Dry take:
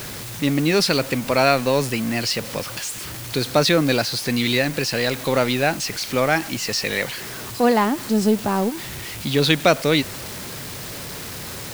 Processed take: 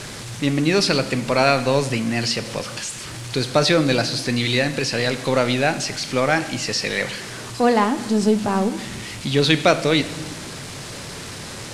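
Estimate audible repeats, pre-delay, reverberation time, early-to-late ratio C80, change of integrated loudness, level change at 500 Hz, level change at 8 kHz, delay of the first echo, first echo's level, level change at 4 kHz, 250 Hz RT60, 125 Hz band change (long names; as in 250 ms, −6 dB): no echo audible, 5 ms, 1.1 s, 16.0 dB, +1.0 dB, +0.5 dB, −0.5 dB, no echo audible, no echo audible, +0.5 dB, 1.8 s, +1.5 dB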